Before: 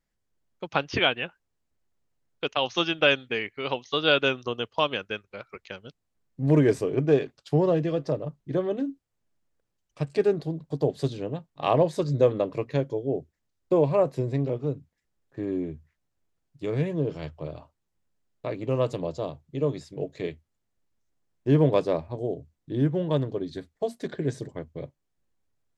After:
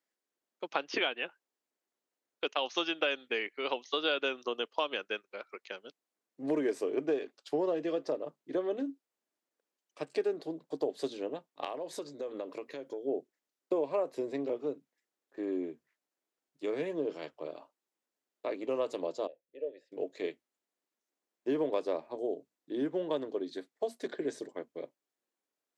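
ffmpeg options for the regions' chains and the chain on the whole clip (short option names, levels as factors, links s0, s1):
-filter_complex "[0:a]asettb=1/sr,asplit=3[s0][s1][s2];[s0]atrim=end=11.644[s3];[s1]atrim=start=11.64:end=13.05,asetpts=PTS-STARTPTS,afade=t=in:d=0.004:c=qsin,afade=t=out:st=1.406:d=0.004:c=qsin,lowpass=f=2700:p=1,aemphasis=mode=production:type=75fm,acompressor=threshold=0.0316:ratio=10:attack=3.2:release=140:knee=1:detection=peak[s4];[s2]atrim=start=13.046[s5];[s3][s4]acrossfade=d=0.004:c1=hsin:c2=qsin[s6];[s6][s5]acrossfade=d=0.004:c1=qsin:c2=hsin,asettb=1/sr,asplit=3[s7][s8][s9];[s7]atrim=end=19.274[s10];[s8]atrim=start=19.27:end=19.92,asetpts=PTS-STARTPTS,afade=t=in:d=0.004:c=qsin,afade=t=out:st=0.646:d=0.004:c=qsin,asplit=3[s11][s12][s13];[s11]bandpass=f=530:t=q:w=8,volume=1[s14];[s12]bandpass=f=1840:t=q:w=8,volume=0.501[s15];[s13]bandpass=f=2480:t=q:w=8,volume=0.355[s16];[s14][s15][s16]amix=inputs=3:normalize=0,equalizer=f=120:w=0.84:g=6[s17];[s9]atrim=start=19.916[s18];[s10][s17]acrossfade=d=0.004:c1=hsin:c2=qsin[s19];[s19][s18]acrossfade=d=0.004:c1=qsin:c2=hsin,highpass=f=280:w=0.5412,highpass=f=280:w=1.3066,acompressor=threshold=0.0631:ratio=6,volume=0.708"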